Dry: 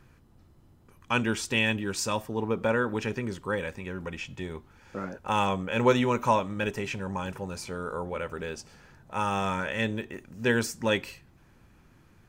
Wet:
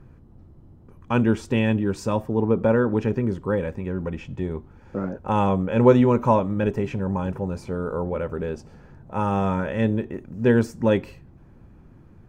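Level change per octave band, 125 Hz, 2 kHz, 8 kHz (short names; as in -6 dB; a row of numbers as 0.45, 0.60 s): +10.0 dB, -3.0 dB, n/a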